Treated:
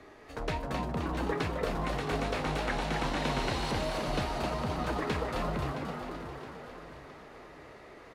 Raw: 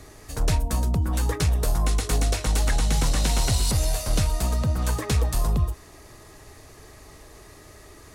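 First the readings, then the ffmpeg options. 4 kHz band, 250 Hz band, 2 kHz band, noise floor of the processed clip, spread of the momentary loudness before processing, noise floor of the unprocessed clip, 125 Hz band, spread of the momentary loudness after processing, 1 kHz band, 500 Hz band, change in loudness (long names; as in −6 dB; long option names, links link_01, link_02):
−7.5 dB, −3.0 dB, −1.0 dB, −52 dBFS, 3 LU, −48 dBFS, −12.5 dB, 17 LU, +0.5 dB, −0.5 dB, −9.0 dB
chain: -filter_complex "[0:a]acrossover=split=210 3500:gain=0.2 1 0.0794[link_01][link_02][link_03];[link_01][link_02][link_03]amix=inputs=3:normalize=0,asplit=2[link_04][link_05];[link_05]asplit=8[link_06][link_07][link_08][link_09][link_10][link_11][link_12][link_13];[link_06]adelay=262,afreqshift=100,volume=-5dB[link_14];[link_07]adelay=524,afreqshift=200,volume=-9.7dB[link_15];[link_08]adelay=786,afreqshift=300,volume=-14.5dB[link_16];[link_09]adelay=1048,afreqshift=400,volume=-19.2dB[link_17];[link_10]adelay=1310,afreqshift=500,volume=-23.9dB[link_18];[link_11]adelay=1572,afreqshift=600,volume=-28.7dB[link_19];[link_12]adelay=1834,afreqshift=700,volume=-33.4dB[link_20];[link_13]adelay=2096,afreqshift=800,volume=-38.1dB[link_21];[link_14][link_15][link_16][link_17][link_18][link_19][link_20][link_21]amix=inputs=8:normalize=0[link_22];[link_04][link_22]amix=inputs=2:normalize=0,flanger=delay=9.5:depth=6:regen=82:speed=1.3:shape=sinusoidal,asplit=2[link_23][link_24];[link_24]aecho=0:1:667|1334|2001|2668:0.266|0.112|0.0469|0.0197[link_25];[link_23][link_25]amix=inputs=2:normalize=0,volume=2dB"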